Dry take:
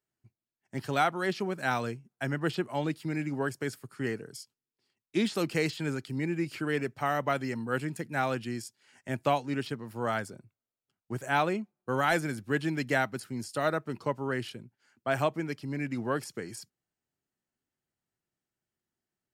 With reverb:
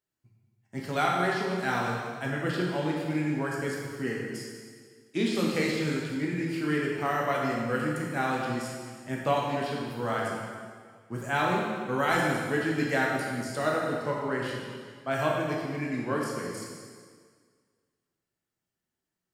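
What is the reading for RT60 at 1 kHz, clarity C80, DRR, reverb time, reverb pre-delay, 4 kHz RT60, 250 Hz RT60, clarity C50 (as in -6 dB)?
1.8 s, 1.5 dB, -3.5 dB, 1.8 s, 5 ms, 1.7 s, 1.9 s, 0.0 dB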